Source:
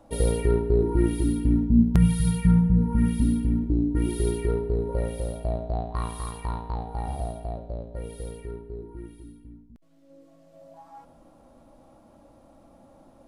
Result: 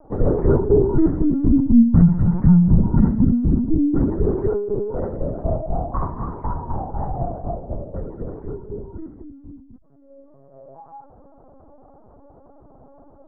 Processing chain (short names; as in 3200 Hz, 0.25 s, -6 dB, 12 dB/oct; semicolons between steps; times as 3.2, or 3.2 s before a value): tracing distortion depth 0.3 ms; inverse Chebyshev low-pass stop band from 2600 Hz, stop band 40 dB; 4.48–5.12 low shelf 98 Hz -12 dB; LPC vocoder at 8 kHz pitch kept; gain +6 dB